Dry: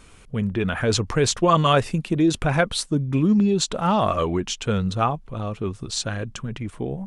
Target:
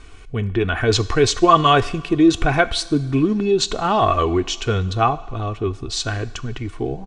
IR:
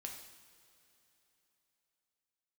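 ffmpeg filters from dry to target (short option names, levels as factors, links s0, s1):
-filter_complex "[0:a]lowpass=6200,lowshelf=f=83:g=5.5,aecho=1:1:2.7:0.61,asplit=2[s0][s1];[1:a]atrim=start_sample=2205,lowshelf=f=390:g=-10[s2];[s1][s2]afir=irnorm=-1:irlink=0,volume=0.562[s3];[s0][s3]amix=inputs=2:normalize=0,volume=1.12"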